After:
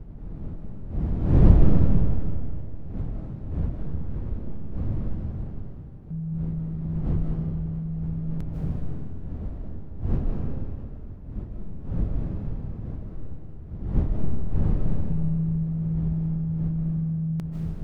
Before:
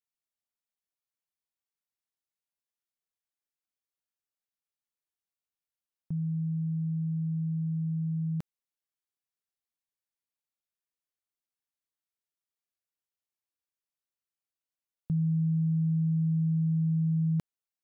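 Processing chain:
wind on the microphone 110 Hz −28 dBFS
mains-hum notches 60/120 Hz
convolution reverb RT60 2.3 s, pre-delay 115 ms, DRR 0 dB

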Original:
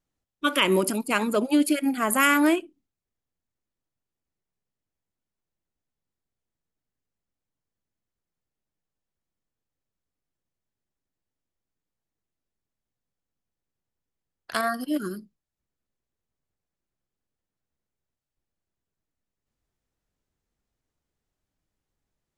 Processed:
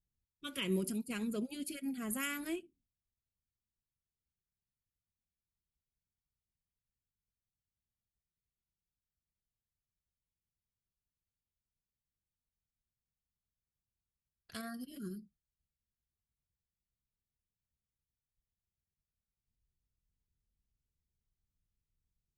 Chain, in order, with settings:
guitar amp tone stack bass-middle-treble 10-0-1
notch comb filter 300 Hz
level +8.5 dB

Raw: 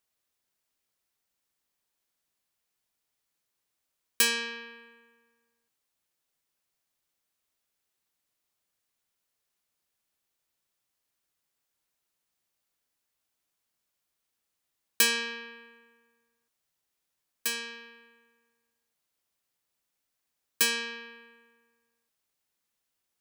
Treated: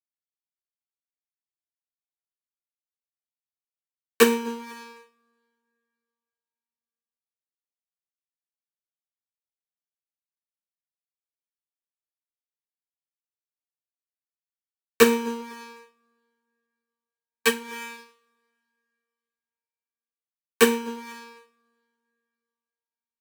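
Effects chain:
bass and treble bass −12 dB, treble −13 dB
on a send: repeating echo 253 ms, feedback 26%, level −13 dB
on the sum: treble cut that deepens with the level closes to 450 Hz, closed at −34 dBFS
leveller curve on the samples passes 5
high-pass filter 94 Hz 6 dB per octave
high-shelf EQ 9,300 Hz +8 dB
coupled-rooms reverb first 0.42 s, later 2.9 s, from −18 dB, DRR −6 dB
expander for the loud parts 2.5 to 1, over −41 dBFS
level +7 dB

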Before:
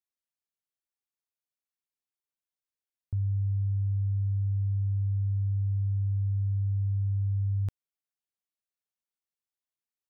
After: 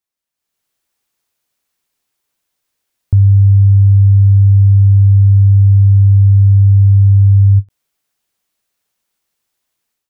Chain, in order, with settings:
automatic gain control gain up to 13.5 dB
every ending faded ahead of time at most 580 dB per second
level +7.5 dB

